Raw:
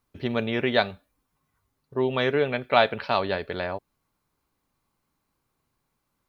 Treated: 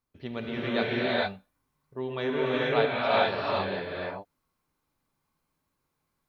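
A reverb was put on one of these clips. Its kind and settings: non-linear reverb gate 0.47 s rising, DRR -7 dB; gain -10 dB

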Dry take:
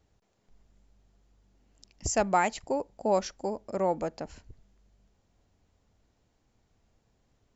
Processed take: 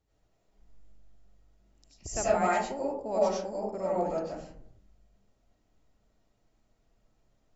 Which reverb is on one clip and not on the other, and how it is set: digital reverb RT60 0.65 s, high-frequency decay 0.35×, pre-delay 55 ms, DRR -8 dB; gain -10 dB

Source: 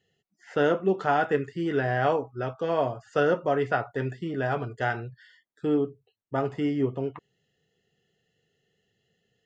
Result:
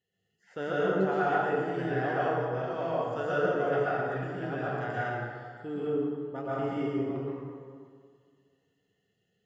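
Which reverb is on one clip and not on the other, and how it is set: plate-style reverb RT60 2 s, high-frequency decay 0.6×, pre-delay 0.105 s, DRR -8.5 dB; gain -12.5 dB

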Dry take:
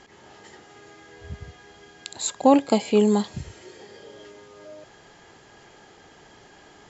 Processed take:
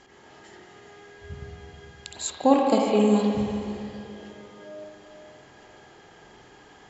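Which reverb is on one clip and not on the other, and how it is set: spring tank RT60 2.7 s, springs 44/52 ms, chirp 45 ms, DRR -0.5 dB; gain -3.5 dB

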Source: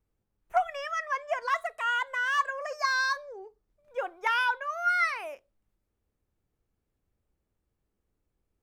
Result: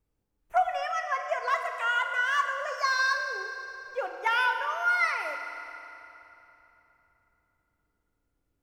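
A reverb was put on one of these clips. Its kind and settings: FDN reverb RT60 3.3 s, low-frequency decay 1.2×, high-frequency decay 0.8×, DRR 4.5 dB

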